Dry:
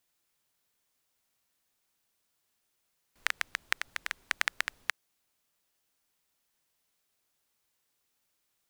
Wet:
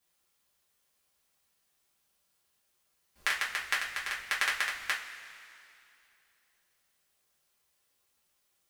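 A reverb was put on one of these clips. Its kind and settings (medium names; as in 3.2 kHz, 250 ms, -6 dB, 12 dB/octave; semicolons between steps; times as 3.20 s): two-slope reverb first 0.27 s, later 2.7 s, from -18 dB, DRR -6.5 dB; trim -4.5 dB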